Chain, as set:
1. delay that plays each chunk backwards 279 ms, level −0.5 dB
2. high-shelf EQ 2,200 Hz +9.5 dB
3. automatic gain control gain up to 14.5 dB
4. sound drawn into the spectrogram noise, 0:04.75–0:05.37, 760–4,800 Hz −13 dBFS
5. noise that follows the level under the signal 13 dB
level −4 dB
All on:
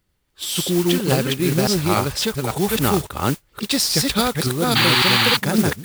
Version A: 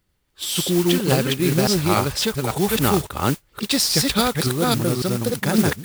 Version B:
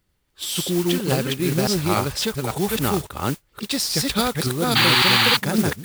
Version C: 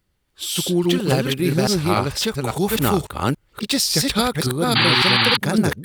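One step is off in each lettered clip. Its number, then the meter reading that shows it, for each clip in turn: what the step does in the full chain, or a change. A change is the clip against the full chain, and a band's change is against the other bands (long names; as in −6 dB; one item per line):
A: 4, change in momentary loudness spread −4 LU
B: 3, 2 kHz band +2.0 dB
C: 5, 8 kHz band −1.5 dB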